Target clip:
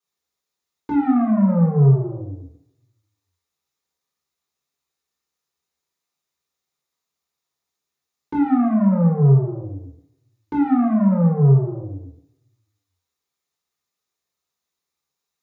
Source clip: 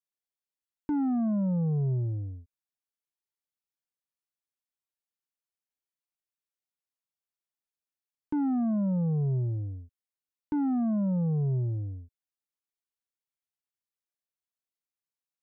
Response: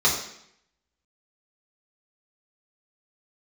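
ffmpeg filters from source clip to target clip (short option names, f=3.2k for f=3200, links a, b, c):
-filter_complex "[0:a]asoftclip=type=tanh:threshold=-27dB[a];[1:a]atrim=start_sample=2205[b];[a][b]afir=irnorm=-1:irlink=0,volume=-2.5dB"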